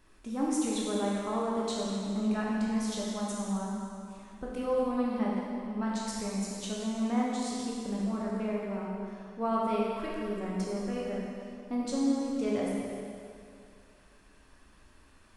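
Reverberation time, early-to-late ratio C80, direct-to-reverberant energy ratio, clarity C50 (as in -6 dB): 2.4 s, -0.5 dB, -5.0 dB, -2.0 dB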